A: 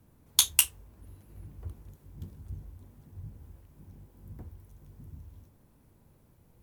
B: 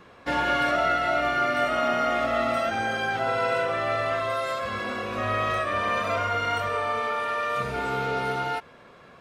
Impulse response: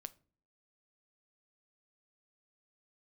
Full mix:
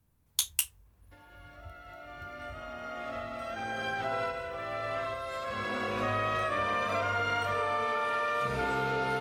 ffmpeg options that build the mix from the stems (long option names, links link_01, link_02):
-filter_complex "[0:a]equalizer=frequency=340:width=0.47:gain=-8.5,volume=-6.5dB,asplit=2[link_01][link_02];[1:a]acompressor=threshold=-28dB:ratio=6,adelay=850,volume=1dB[link_03];[link_02]apad=whole_len=443610[link_04];[link_03][link_04]sidechaincompress=threshold=-56dB:ratio=16:attack=29:release=1350[link_05];[link_01][link_05]amix=inputs=2:normalize=0"